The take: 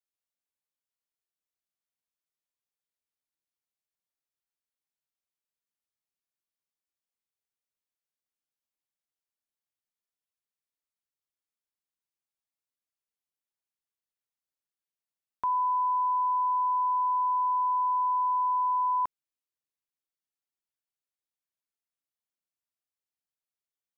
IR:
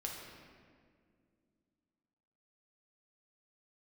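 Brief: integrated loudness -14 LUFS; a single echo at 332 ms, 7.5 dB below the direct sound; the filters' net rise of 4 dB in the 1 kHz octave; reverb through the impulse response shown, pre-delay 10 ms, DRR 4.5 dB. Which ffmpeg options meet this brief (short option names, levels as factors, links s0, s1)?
-filter_complex "[0:a]equalizer=f=1000:t=o:g=4,aecho=1:1:332:0.422,asplit=2[s0][s1];[1:a]atrim=start_sample=2205,adelay=10[s2];[s1][s2]afir=irnorm=-1:irlink=0,volume=0.596[s3];[s0][s3]amix=inputs=2:normalize=0,volume=2"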